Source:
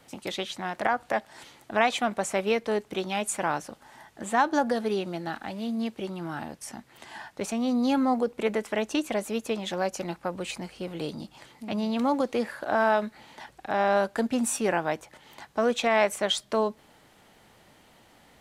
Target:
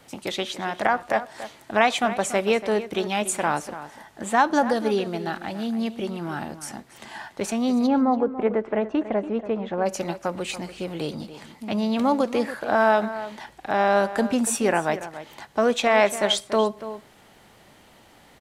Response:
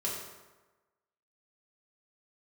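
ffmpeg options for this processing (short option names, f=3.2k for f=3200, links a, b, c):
-filter_complex "[0:a]asplit=3[a][b][c];[a]afade=t=out:st=7.86:d=0.02[d];[b]lowpass=1.4k,afade=t=in:st=7.86:d=0.02,afade=t=out:st=9.85:d=0.02[e];[c]afade=t=in:st=9.85:d=0.02[f];[d][e][f]amix=inputs=3:normalize=0,asplit=2[g][h];[h]adelay=285.7,volume=-13dB,highshelf=f=4k:g=-6.43[i];[g][i]amix=inputs=2:normalize=0,asplit=2[j][k];[1:a]atrim=start_sample=2205,afade=t=out:st=0.18:d=0.01,atrim=end_sample=8379[l];[k][l]afir=irnorm=-1:irlink=0,volume=-22.5dB[m];[j][m]amix=inputs=2:normalize=0,volume=3.5dB"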